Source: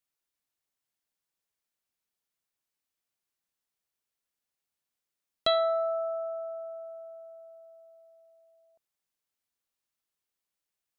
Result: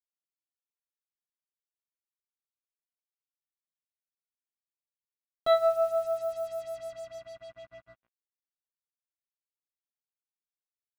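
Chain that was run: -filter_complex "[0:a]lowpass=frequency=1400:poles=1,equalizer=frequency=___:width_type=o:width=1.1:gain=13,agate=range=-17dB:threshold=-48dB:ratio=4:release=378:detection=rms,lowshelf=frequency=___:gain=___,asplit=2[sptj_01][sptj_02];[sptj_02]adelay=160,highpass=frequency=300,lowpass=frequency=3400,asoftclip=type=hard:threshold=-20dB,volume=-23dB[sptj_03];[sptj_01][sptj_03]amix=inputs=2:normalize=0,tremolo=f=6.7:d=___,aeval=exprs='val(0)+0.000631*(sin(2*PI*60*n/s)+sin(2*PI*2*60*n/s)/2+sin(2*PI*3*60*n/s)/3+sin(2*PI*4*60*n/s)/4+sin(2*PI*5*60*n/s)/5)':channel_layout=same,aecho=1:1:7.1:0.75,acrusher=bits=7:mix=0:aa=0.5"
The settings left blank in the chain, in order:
950, 150, 10.5, 0.83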